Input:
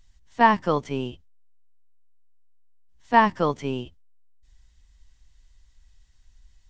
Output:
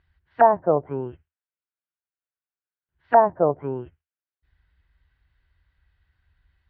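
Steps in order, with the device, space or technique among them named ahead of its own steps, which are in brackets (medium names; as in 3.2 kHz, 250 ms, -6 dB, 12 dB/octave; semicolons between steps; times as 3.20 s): envelope filter bass rig (touch-sensitive low-pass 670–4900 Hz down, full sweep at -21 dBFS; cabinet simulation 63–2400 Hz, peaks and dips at 79 Hz +7 dB, 150 Hz +3 dB, 220 Hz -9 dB, 370 Hz +4 dB, 1.5 kHz +9 dB); trim -2.5 dB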